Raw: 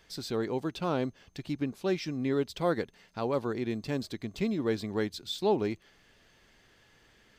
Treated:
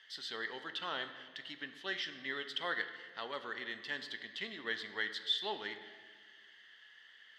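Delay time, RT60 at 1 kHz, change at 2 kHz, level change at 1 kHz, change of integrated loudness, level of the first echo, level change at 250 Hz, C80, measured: no echo audible, 1.6 s, +4.5 dB, −7.0 dB, −7.0 dB, no echo audible, −20.5 dB, 11.0 dB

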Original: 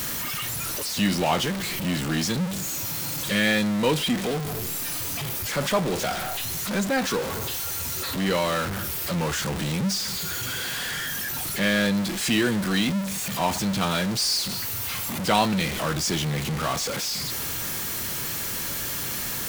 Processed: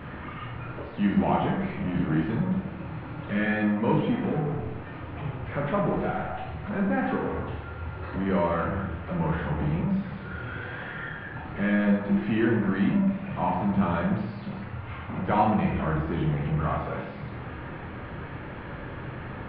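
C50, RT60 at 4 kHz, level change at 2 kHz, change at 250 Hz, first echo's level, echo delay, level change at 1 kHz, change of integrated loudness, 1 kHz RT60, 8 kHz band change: 3.5 dB, 0.55 s, −5.5 dB, +1.0 dB, no echo audible, no echo audible, −0.5 dB, −3.0 dB, 0.85 s, below −40 dB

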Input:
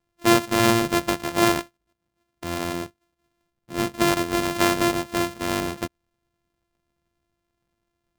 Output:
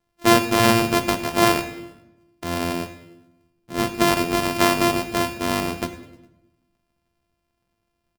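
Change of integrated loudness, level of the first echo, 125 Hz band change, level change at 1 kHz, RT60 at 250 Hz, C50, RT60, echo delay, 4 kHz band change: +2.0 dB, −19.0 dB, +2.5 dB, +3.5 dB, 1.2 s, 11.5 dB, 0.95 s, 102 ms, +3.0 dB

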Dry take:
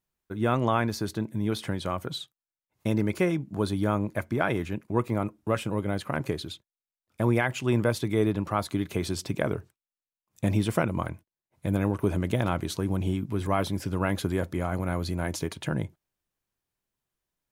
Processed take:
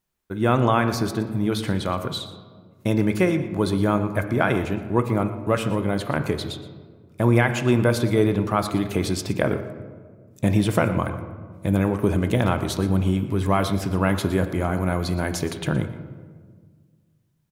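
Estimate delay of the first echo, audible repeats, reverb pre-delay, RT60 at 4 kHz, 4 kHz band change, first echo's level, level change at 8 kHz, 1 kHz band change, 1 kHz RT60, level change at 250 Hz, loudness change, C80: 119 ms, 1, 13 ms, 0.90 s, +5.5 dB, −16.0 dB, +5.0 dB, +5.5 dB, 1.5 s, +6.0 dB, +5.5 dB, 10.5 dB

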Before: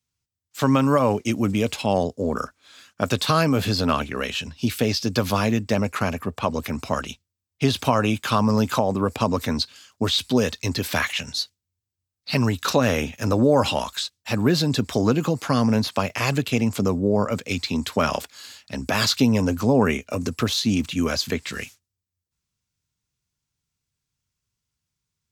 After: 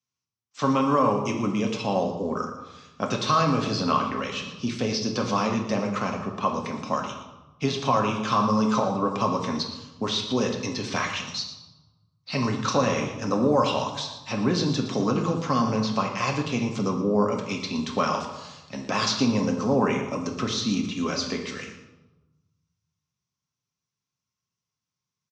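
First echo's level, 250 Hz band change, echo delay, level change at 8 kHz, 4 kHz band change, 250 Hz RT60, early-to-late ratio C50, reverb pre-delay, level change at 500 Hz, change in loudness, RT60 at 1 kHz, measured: −13.5 dB, −3.0 dB, 116 ms, −3.5 dB, −4.5 dB, 1.4 s, 6.0 dB, 4 ms, −3.0 dB, −3.0 dB, 1.1 s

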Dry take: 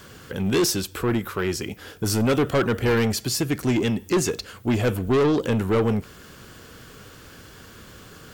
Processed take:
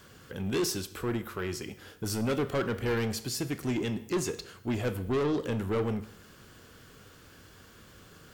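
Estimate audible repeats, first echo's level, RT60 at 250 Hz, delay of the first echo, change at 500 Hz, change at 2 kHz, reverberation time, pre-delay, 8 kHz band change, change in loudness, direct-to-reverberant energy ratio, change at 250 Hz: no echo audible, no echo audible, 0.75 s, no echo audible, −8.5 dB, −8.5 dB, 0.75 s, 20 ms, −9.0 dB, −8.5 dB, 12.0 dB, −9.0 dB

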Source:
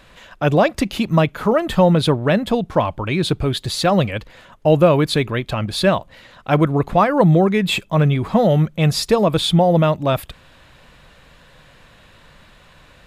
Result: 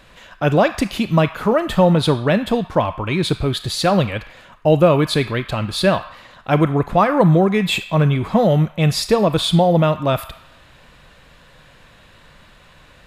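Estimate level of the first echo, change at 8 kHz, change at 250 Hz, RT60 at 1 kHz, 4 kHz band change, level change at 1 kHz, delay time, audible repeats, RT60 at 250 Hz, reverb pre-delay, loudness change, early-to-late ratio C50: no echo audible, +0.5 dB, 0.0 dB, 0.95 s, 0.0 dB, 0.0 dB, no echo audible, no echo audible, 1.2 s, 25 ms, 0.0 dB, 12.5 dB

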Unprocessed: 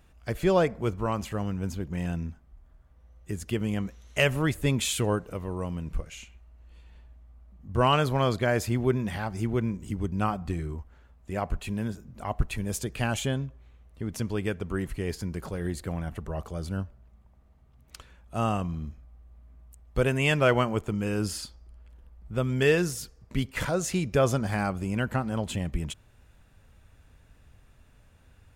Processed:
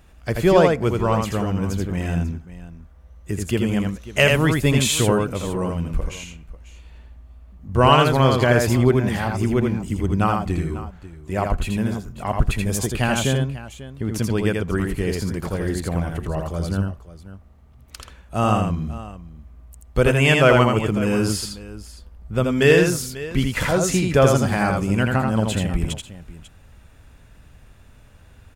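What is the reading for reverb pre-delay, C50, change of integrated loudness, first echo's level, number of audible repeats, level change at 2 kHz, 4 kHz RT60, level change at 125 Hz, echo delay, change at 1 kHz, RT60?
no reverb audible, no reverb audible, +8.5 dB, −3.5 dB, 2, +8.5 dB, no reverb audible, +8.5 dB, 82 ms, +8.5 dB, no reverb audible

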